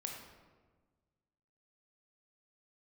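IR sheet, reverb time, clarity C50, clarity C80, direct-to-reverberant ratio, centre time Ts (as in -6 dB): 1.4 s, 3.0 dB, 5.0 dB, 0.5 dB, 49 ms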